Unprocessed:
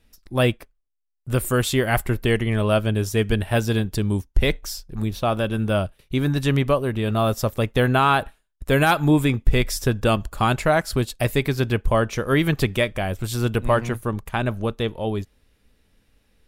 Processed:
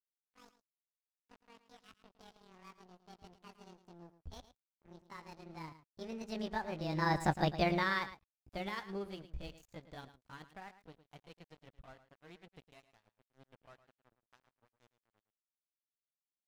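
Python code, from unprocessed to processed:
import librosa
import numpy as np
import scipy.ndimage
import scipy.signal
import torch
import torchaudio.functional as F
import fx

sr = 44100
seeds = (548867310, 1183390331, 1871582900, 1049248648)

p1 = fx.pitch_glide(x, sr, semitones=11.5, runs='ending unshifted')
p2 = fx.doppler_pass(p1, sr, speed_mps=8, closest_m=2.0, pass_at_s=7.31)
p3 = scipy.signal.sosfilt(scipy.signal.butter(2, 7000.0, 'lowpass', fs=sr, output='sos'), p2)
p4 = np.sign(p3) * np.maximum(np.abs(p3) - 10.0 ** (-49.0 / 20.0), 0.0)
p5 = p4 + fx.echo_single(p4, sr, ms=110, db=-13.5, dry=0)
y = F.gain(torch.from_numpy(p5), -6.5).numpy()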